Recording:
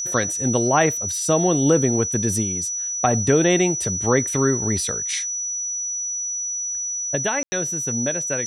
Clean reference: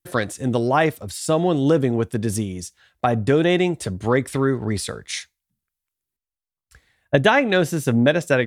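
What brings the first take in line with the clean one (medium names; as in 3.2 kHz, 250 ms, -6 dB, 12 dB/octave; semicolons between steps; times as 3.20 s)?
band-stop 5.9 kHz, Q 30; room tone fill 7.43–7.52 s; trim 0 dB, from 5.76 s +9 dB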